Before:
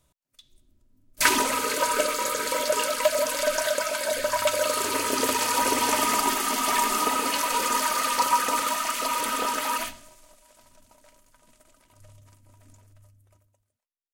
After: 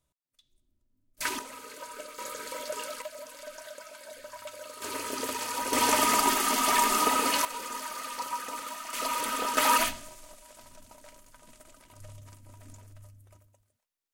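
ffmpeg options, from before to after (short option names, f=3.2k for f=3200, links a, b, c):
-af "asetnsamples=n=441:p=0,asendcmd='1.39 volume volume -18.5dB;2.18 volume volume -11.5dB;3.02 volume volume -19dB;4.82 volume volume -9dB;5.73 volume volume -0.5dB;7.45 volume volume -12.5dB;8.93 volume volume -4dB;9.57 volume volume 4.5dB',volume=-11.5dB"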